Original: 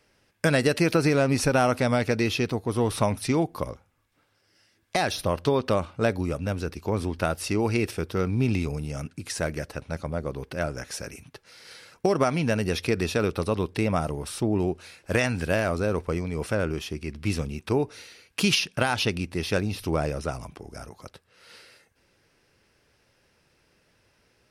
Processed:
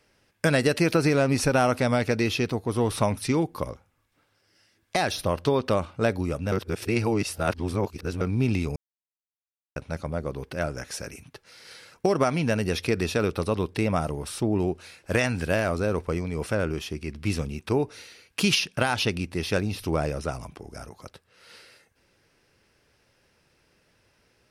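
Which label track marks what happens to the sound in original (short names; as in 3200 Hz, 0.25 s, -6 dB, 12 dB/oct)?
3.140000	3.600000	notch 690 Hz, Q 5.5
6.520000	8.210000	reverse
8.760000	9.760000	mute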